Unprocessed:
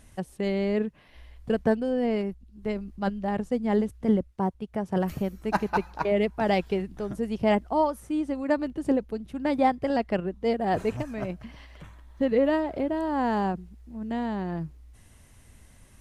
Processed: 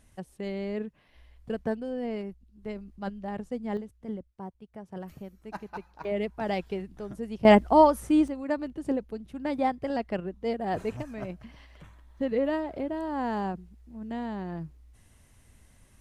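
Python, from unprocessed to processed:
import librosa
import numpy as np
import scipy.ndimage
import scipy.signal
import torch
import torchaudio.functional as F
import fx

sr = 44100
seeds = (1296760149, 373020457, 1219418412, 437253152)

y = fx.gain(x, sr, db=fx.steps((0.0, -7.0), (3.77, -13.5), (6.04, -6.0), (7.45, 6.0), (8.28, -4.5)))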